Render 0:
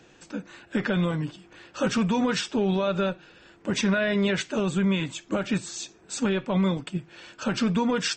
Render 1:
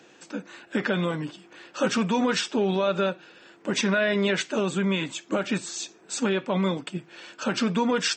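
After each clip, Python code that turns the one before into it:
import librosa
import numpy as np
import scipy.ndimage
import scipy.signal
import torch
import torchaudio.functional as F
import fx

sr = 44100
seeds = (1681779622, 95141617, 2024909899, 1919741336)

y = scipy.signal.sosfilt(scipy.signal.butter(2, 220.0, 'highpass', fs=sr, output='sos'), x)
y = y * librosa.db_to_amplitude(2.0)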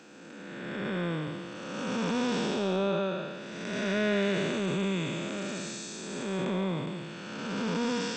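y = fx.spec_blur(x, sr, span_ms=469.0)
y = fx.transient(y, sr, attack_db=-7, sustain_db=2)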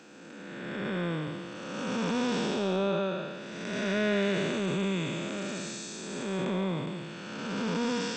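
y = x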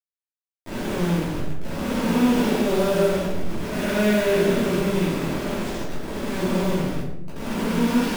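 y = fx.delta_hold(x, sr, step_db=-30.0)
y = fx.room_shoebox(y, sr, seeds[0], volume_m3=190.0, walls='mixed', distance_m=2.8)
y = y * librosa.db_to_amplitude(-2.5)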